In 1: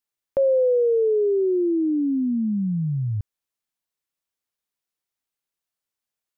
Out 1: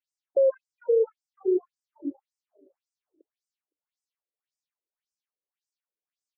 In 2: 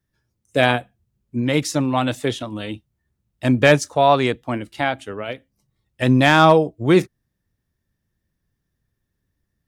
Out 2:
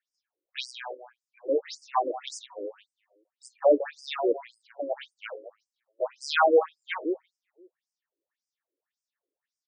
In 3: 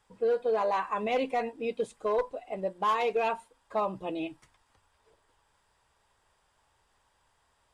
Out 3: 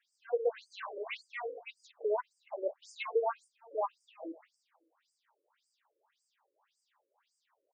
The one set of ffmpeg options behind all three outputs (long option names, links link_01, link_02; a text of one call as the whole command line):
ffmpeg -i in.wav -filter_complex "[0:a]asplit=2[link_01][link_02];[link_02]adelay=171,lowpass=frequency=1100:poles=1,volume=-12dB,asplit=2[link_03][link_04];[link_04]adelay=171,lowpass=frequency=1100:poles=1,volume=0.37,asplit=2[link_05][link_06];[link_06]adelay=171,lowpass=frequency=1100:poles=1,volume=0.37,asplit=2[link_07][link_08];[link_08]adelay=171,lowpass=frequency=1100:poles=1,volume=0.37[link_09];[link_01][link_03][link_05][link_07][link_09]amix=inputs=5:normalize=0,aeval=exprs='(tanh(2.82*val(0)+0.1)-tanh(0.1))/2.82':channel_layout=same,afftfilt=real='re*between(b*sr/1024,400*pow(6800/400,0.5+0.5*sin(2*PI*1.8*pts/sr))/1.41,400*pow(6800/400,0.5+0.5*sin(2*PI*1.8*pts/sr))*1.41)':imag='im*between(b*sr/1024,400*pow(6800/400,0.5+0.5*sin(2*PI*1.8*pts/sr))/1.41,400*pow(6800/400,0.5+0.5*sin(2*PI*1.8*pts/sr))*1.41)':win_size=1024:overlap=0.75" out.wav